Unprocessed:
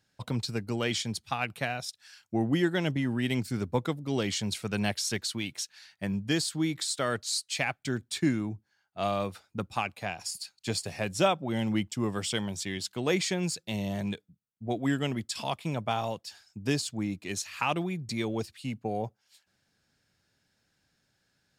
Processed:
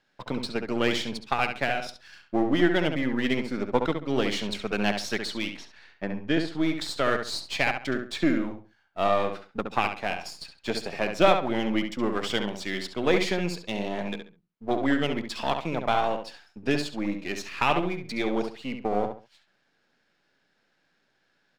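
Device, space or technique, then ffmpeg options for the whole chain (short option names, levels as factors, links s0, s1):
crystal radio: -filter_complex "[0:a]highpass=270,lowpass=3400,aeval=exprs='if(lt(val(0),0),0.447*val(0),val(0))':c=same,asettb=1/sr,asplit=3[s0][s1][s2];[s0]atrim=end=5.574[s3];[s1]atrim=start=5.57:end=6.53,asetpts=PTS-STARTPTS,afade=t=in:d=0.004:c=qsin,afade=t=out:st=0.956:d=0.004:c=qsin,aemphasis=mode=reproduction:type=75kf[s4];[s2]atrim=start=6.526[s5];[s3][s4]acrossfade=d=0.004:c1=hsin:c2=qsin[s6];[s6][s5]acrossfade=d=0.004:c1=qsin:c2=hsin,asplit=2[s7][s8];[s8]adelay=68,lowpass=f=3400:p=1,volume=0.501,asplit=2[s9][s10];[s10]adelay=68,lowpass=f=3400:p=1,volume=0.27,asplit=2[s11][s12];[s12]adelay=68,lowpass=f=3400:p=1,volume=0.27[s13];[s7][s9][s11][s13]amix=inputs=4:normalize=0,volume=2.51"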